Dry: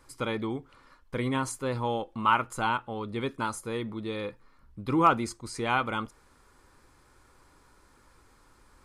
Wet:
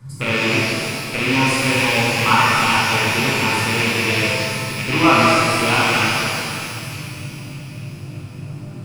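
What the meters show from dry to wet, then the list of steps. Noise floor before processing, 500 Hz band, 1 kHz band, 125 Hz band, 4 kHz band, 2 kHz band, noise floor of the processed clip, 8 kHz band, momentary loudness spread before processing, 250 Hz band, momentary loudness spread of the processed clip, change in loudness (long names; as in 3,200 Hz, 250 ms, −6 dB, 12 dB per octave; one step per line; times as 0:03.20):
−61 dBFS, +11.0 dB, +10.0 dB, +14.5 dB, +21.0 dB, +19.0 dB, −33 dBFS, +17.5 dB, 12 LU, +11.5 dB, 18 LU, +13.5 dB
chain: loose part that buzzes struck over −35 dBFS, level −15 dBFS
echo with a time of its own for lows and highs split 2,100 Hz, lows 307 ms, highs 606 ms, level −14 dB
noise in a band 100–170 Hz −42 dBFS
reverb with rising layers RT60 2.3 s, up +12 semitones, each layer −8 dB, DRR −7.5 dB
level +1.5 dB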